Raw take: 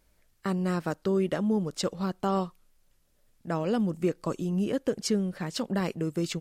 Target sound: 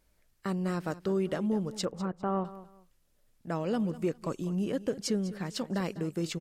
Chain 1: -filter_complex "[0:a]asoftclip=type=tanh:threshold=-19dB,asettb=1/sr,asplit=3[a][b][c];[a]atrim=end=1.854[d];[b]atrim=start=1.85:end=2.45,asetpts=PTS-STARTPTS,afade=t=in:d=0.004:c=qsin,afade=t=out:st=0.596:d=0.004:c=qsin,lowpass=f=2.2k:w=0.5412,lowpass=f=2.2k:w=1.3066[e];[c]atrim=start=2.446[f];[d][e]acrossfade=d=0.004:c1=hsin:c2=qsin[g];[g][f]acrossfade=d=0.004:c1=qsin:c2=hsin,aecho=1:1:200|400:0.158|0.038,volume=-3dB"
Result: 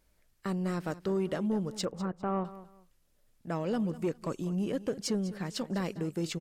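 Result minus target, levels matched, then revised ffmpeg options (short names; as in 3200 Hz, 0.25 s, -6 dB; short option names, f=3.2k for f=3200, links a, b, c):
soft clip: distortion +12 dB
-filter_complex "[0:a]asoftclip=type=tanh:threshold=-12dB,asettb=1/sr,asplit=3[a][b][c];[a]atrim=end=1.854[d];[b]atrim=start=1.85:end=2.45,asetpts=PTS-STARTPTS,afade=t=in:d=0.004:c=qsin,afade=t=out:st=0.596:d=0.004:c=qsin,lowpass=f=2.2k:w=0.5412,lowpass=f=2.2k:w=1.3066[e];[c]atrim=start=2.446[f];[d][e]acrossfade=d=0.004:c1=hsin:c2=qsin[g];[g][f]acrossfade=d=0.004:c1=qsin:c2=hsin,aecho=1:1:200|400:0.158|0.038,volume=-3dB"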